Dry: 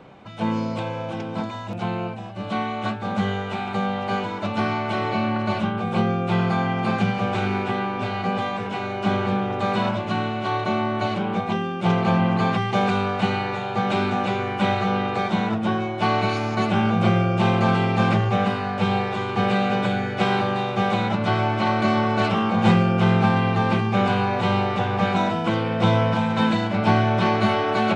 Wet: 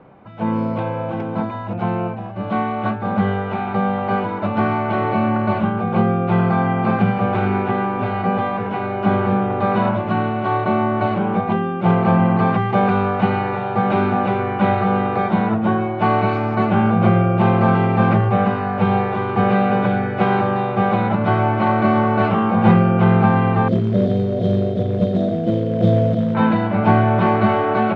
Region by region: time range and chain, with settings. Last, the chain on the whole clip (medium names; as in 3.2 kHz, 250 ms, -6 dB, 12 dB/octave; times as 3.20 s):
23.68–26.35 s: self-modulated delay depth 0.053 ms + brick-wall FIR band-stop 720–3000 Hz + short-mantissa float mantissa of 2-bit
whole clip: low-pass 1.7 kHz 12 dB/octave; level rider gain up to 5.5 dB